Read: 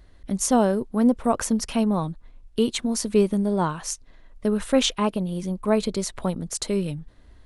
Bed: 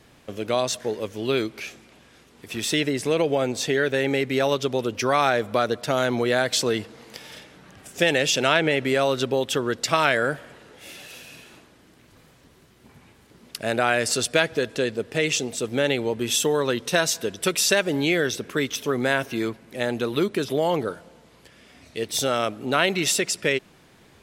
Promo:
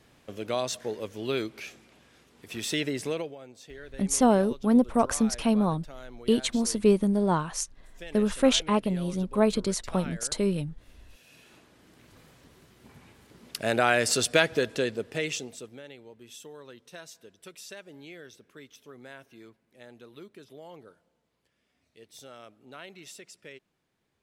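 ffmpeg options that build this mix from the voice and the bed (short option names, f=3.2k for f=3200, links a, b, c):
-filter_complex "[0:a]adelay=3700,volume=-1.5dB[a];[1:a]volume=15.5dB,afade=t=out:st=3.03:d=0.32:silence=0.141254,afade=t=in:st=11.08:d=0.97:silence=0.0841395,afade=t=out:st=14.55:d=1.26:silence=0.0749894[b];[a][b]amix=inputs=2:normalize=0"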